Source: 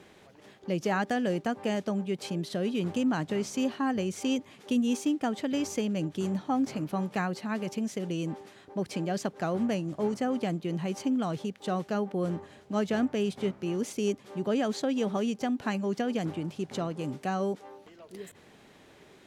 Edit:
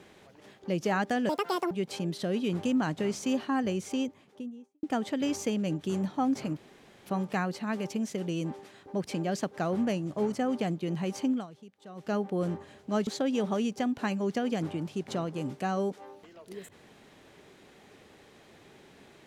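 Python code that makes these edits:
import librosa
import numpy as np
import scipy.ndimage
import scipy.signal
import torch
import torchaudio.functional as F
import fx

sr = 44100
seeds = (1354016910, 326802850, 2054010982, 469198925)

y = fx.studio_fade_out(x, sr, start_s=3.96, length_s=1.18)
y = fx.edit(y, sr, fx.speed_span(start_s=1.29, length_s=0.73, speed=1.74),
    fx.insert_room_tone(at_s=6.88, length_s=0.49),
    fx.fade_down_up(start_s=11.14, length_s=0.78, db=-16.5, fade_s=0.15),
    fx.cut(start_s=12.89, length_s=1.81), tone=tone)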